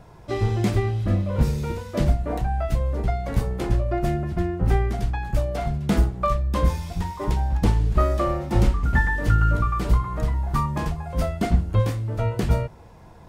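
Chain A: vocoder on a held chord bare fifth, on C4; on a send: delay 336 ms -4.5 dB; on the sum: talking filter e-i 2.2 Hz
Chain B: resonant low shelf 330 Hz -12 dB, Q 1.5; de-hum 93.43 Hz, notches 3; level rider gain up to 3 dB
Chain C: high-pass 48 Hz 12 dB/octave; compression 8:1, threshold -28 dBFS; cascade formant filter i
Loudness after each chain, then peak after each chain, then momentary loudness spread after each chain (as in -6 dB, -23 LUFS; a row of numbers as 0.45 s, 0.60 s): -34.0 LUFS, -26.0 LUFS, -44.5 LUFS; -16.5 dBFS, -7.5 dBFS, -24.5 dBFS; 9 LU, 7 LU, 4 LU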